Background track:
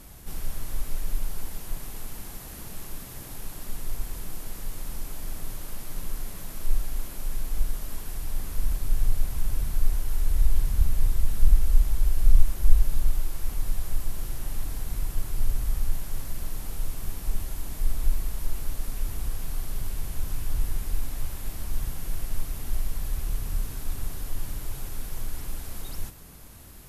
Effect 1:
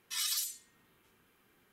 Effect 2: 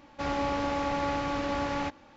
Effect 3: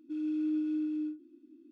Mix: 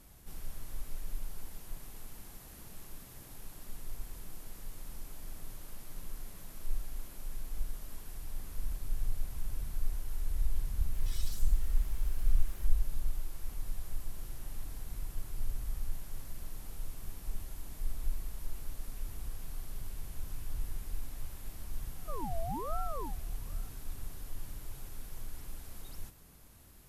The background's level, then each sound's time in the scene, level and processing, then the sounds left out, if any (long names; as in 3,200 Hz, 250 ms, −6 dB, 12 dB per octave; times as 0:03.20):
background track −10.5 dB
0:10.95: mix in 1 −16.5 dB + converter with a step at zero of −38.5 dBFS
0:21.98: mix in 3 −4 dB + ring modulator whose carrier an LFO sweeps 700 Hz, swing 50%, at 1.2 Hz
not used: 2